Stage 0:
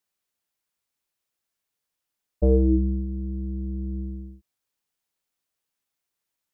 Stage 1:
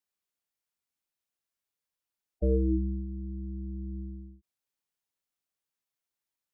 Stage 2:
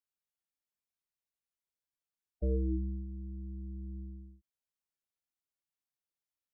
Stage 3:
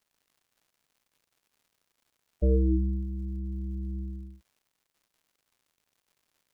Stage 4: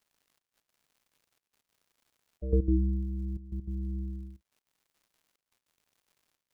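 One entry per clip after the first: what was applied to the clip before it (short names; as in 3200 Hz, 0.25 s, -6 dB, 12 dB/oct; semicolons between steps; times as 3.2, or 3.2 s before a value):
spectral gate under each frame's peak -25 dB strong; gain -7 dB
low shelf 150 Hz +5 dB; gain -8.5 dB
crackle 200/s -65 dBFS; gain +8 dB
step gate "xxxxx..x.xxxx" 196 bpm -12 dB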